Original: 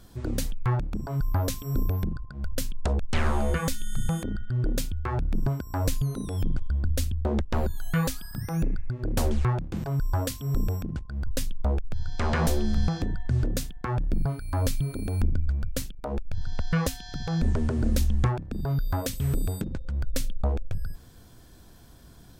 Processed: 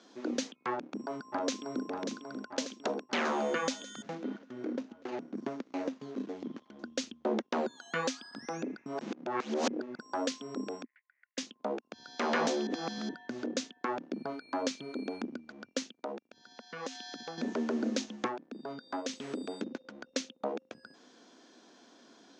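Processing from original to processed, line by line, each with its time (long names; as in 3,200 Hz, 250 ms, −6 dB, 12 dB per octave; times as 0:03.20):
0:00.73–0:01.85: delay throw 590 ms, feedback 65%, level −7 dB
0:04.02–0:06.76: running median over 41 samples
0:08.86–0:09.99: reverse
0:10.84–0:11.38: flat-topped band-pass 2,000 Hz, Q 4.6
0:12.67–0:13.09: reverse
0:15.88–0:17.38: downward compressor, threshold −31 dBFS
0:18.05–0:19.09: expander for the loud parts, over −35 dBFS
whole clip: Chebyshev band-pass filter 240–6,500 Hz, order 4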